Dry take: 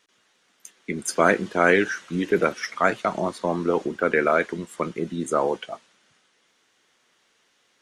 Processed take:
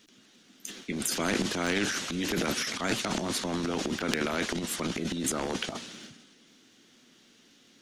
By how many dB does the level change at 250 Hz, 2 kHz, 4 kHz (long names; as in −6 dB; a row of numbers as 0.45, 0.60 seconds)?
−3.5, −8.0, +7.0 decibels